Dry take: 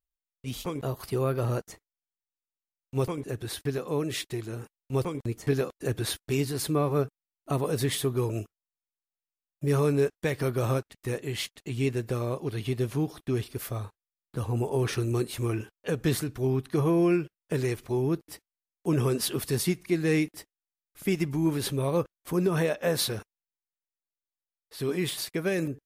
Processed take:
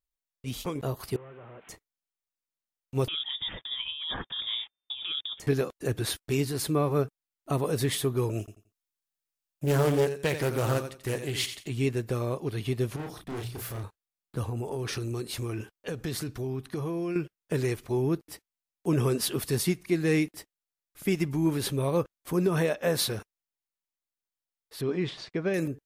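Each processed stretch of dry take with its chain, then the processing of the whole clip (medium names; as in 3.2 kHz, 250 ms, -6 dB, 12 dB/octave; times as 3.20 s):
1.16–1.69 s: one-bit delta coder 16 kbps, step -45 dBFS + high-pass 590 Hz 6 dB/octave + compression 4:1, threshold -46 dBFS
3.08–5.40 s: compressor with a negative ratio -34 dBFS + frequency inversion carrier 3.6 kHz
8.39–11.68 s: treble shelf 2.7 kHz +5 dB + feedback delay 87 ms, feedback 25%, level -9.5 dB + loudspeaker Doppler distortion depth 0.45 ms
12.96–13.84 s: hum notches 60/120/180 Hz + overload inside the chain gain 35 dB + doubling 34 ms -3 dB
14.49–17.16 s: dynamic bell 4.8 kHz, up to +5 dB, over -52 dBFS, Q 1.7 + compression, threshold -29 dBFS
24.81–25.54 s: low-pass 5.8 kHz 24 dB/octave + treble shelf 2.3 kHz -8 dB
whole clip: none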